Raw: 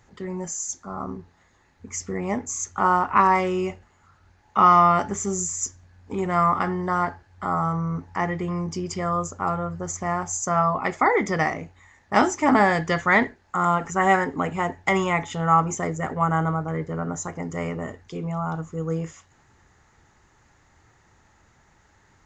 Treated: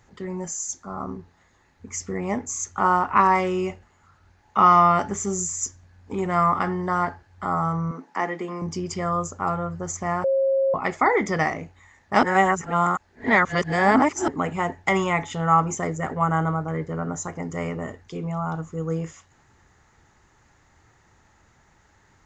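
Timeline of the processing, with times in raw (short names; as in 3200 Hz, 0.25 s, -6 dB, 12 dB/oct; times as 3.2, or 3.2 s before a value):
7.91–8.62 steep high-pass 210 Hz
10.24–10.74 bleep 540 Hz -17.5 dBFS
12.23–14.28 reverse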